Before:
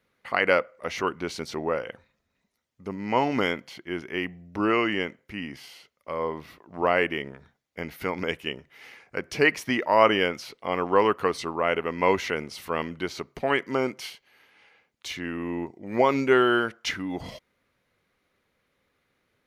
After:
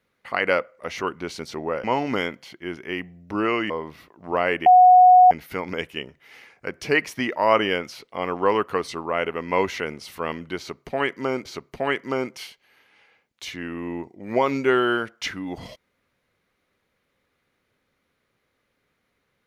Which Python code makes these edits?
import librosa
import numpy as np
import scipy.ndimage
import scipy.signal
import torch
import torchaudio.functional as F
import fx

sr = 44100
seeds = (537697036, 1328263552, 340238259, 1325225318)

y = fx.edit(x, sr, fx.cut(start_s=1.84, length_s=1.25),
    fx.cut(start_s=4.95, length_s=1.25),
    fx.bleep(start_s=7.16, length_s=0.65, hz=732.0, db=-8.0),
    fx.repeat(start_s=13.08, length_s=0.87, count=2), tone=tone)